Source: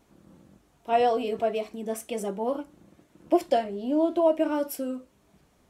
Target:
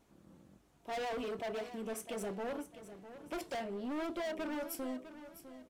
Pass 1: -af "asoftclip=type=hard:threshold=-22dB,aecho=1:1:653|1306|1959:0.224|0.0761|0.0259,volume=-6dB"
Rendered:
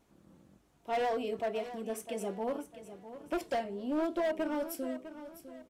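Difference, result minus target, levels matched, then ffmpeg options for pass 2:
hard clipping: distortion −6 dB
-af "asoftclip=type=hard:threshold=-30.5dB,aecho=1:1:653|1306|1959:0.224|0.0761|0.0259,volume=-6dB"

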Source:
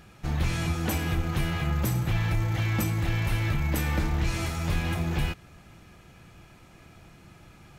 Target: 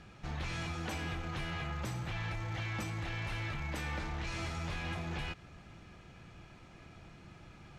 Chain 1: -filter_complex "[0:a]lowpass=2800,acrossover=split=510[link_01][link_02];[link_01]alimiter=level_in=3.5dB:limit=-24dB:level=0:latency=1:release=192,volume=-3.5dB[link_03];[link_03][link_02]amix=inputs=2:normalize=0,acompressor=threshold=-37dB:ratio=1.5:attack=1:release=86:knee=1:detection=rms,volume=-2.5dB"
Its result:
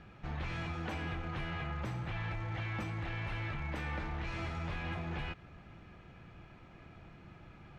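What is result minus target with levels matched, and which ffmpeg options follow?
8,000 Hz band −11.5 dB
-filter_complex "[0:a]lowpass=6000,acrossover=split=510[link_01][link_02];[link_01]alimiter=level_in=3.5dB:limit=-24dB:level=0:latency=1:release=192,volume=-3.5dB[link_03];[link_03][link_02]amix=inputs=2:normalize=0,acompressor=threshold=-37dB:ratio=1.5:attack=1:release=86:knee=1:detection=rms,volume=-2.5dB"

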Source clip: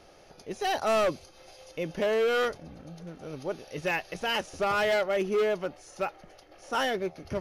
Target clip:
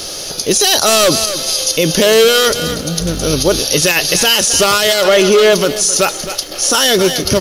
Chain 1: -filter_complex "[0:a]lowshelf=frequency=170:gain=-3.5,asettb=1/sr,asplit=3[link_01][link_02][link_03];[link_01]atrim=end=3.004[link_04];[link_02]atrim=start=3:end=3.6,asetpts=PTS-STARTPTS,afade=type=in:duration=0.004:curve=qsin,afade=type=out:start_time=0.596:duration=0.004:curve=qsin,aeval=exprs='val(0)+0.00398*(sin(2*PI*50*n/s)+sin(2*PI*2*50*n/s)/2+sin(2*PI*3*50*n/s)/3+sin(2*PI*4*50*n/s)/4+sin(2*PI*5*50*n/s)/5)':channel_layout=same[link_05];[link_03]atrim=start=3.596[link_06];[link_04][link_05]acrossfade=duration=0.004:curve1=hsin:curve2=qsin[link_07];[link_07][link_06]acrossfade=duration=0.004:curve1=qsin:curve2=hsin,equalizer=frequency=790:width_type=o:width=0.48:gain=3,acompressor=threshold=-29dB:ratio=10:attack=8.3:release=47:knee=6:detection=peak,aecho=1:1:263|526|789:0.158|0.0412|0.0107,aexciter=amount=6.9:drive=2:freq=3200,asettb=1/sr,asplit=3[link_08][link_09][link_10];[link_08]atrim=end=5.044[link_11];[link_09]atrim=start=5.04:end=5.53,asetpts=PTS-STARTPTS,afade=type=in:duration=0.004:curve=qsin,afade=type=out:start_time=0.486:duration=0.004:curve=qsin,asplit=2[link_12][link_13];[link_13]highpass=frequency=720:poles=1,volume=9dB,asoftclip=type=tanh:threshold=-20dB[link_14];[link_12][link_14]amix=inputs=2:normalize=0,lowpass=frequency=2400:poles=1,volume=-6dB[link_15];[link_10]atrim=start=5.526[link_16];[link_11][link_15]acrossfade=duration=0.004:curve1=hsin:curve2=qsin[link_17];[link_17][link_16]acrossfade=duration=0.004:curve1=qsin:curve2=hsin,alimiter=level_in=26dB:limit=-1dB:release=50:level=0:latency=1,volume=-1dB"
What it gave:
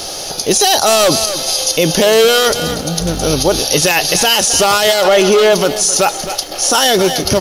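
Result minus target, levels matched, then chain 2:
1,000 Hz band +3.5 dB
-filter_complex "[0:a]lowshelf=frequency=170:gain=-3.5,asettb=1/sr,asplit=3[link_01][link_02][link_03];[link_01]atrim=end=3.004[link_04];[link_02]atrim=start=3:end=3.6,asetpts=PTS-STARTPTS,afade=type=in:duration=0.004:curve=qsin,afade=type=out:start_time=0.596:duration=0.004:curve=qsin,aeval=exprs='val(0)+0.00398*(sin(2*PI*50*n/s)+sin(2*PI*2*50*n/s)/2+sin(2*PI*3*50*n/s)/3+sin(2*PI*4*50*n/s)/4+sin(2*PI*5*50*n/s)/5)':channel_layout=same[link_05];[link_03]atrim=start=3.596[link_06];[link_04][link_05]acrossfade=duration=0.004:curve1=hsin:curve2=qsin[link_07];[link_07][link_06]acrossfade=duration=0.004:curve1=qsin:curve2=hsin,equalizer=frequency=790:width_type=o:width=0.48:gain=-6.5,acompressor=threshold=-29dB:ratio=10:attack=8.3:release=47:knee=6:detection=peak,aecho=1:1:263|526|789:0.158|0.0412|0.0107,aexciter=amount=6.9:drive=2:freq=3200,asettb=1/sr,asplit=3[link_08][link_09][link_10];[link_08]atrim=end=5.044[link_11];[link_09]atrim=start=5.04:end=5.53,asetpts=PTS-STARTPTS,afade=type=in:duration=0.004:curve=qsin,afade=type=out:start_time=0.486:duration=0.004:curve=qsin,asplit=2[link_12][link_13];[link_13]highpass=frequency=720:poles=1,volume=9dB,asoftclip=type=tanh:threshold=-20dB[link_14];[link_12][link_14]amix=inputs=2:normalize=0,lowpass=frequency=2400:poles=1,volume=-6dB[link_15];[link_10]atrim=start=5.526[link_16];[link_11][link_15]acrossfade=duration=0.004:curve1=hsin:curve2=qsin[link_17];[link_17][link_16]acrossfade=duration=0.004:curve1=qsin:curve2=hsin,alimiter=level_in=26dB:limit=-1dB:release=50:level=0:latency=1,volume=-1dB"

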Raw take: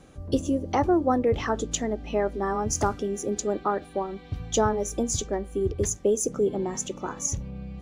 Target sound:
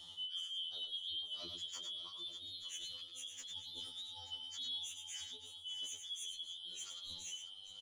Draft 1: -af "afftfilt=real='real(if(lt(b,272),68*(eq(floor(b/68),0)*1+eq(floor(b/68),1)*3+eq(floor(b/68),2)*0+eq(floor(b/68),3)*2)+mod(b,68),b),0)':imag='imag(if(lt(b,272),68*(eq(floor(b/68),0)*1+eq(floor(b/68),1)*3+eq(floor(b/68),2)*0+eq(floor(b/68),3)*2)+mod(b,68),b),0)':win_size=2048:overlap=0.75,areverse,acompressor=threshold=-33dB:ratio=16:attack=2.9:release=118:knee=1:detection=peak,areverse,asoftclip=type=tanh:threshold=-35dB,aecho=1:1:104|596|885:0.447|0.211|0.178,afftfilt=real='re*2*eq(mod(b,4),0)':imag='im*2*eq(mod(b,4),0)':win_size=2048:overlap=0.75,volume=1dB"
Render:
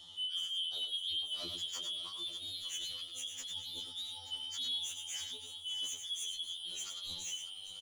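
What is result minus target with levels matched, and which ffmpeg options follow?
downward compressor: peak gain reduction −7.5 dB
-af "afftfilt=real='real(if(lt(b,272),68*(eq(floor(b/68),0)*1+eq(floor(b/68),1)*3+eq(floor(b/68),2)*0+eq(floor(b/68),3)*2)+mod(b,68),b),0)':imag='imag(if(lt(b,272),68*(eq(floor(b/68),0)*1+eq(floor(b/68),1)*3+eq(floor(b/68),2)*0+eq(floor(b/68),3)*2)+mod(b,68),b),0)':win_size=2048:overlap=0.75,areverse,acompressor=threshold=-41dB:ratio=16:attack=2.9:release=118:knee=1:detection=peak,areverse,asoftclip=type=tanh:threshold=-35dB,aecho=1:1:104|596|885:0.447|0.211|0.178,afftfilt=real='re*2*eq(mod(b,4),0)':imag='im*2*eq(mod(b,4),0)':win_size=2048:overlap=0.75,volume=1dB"

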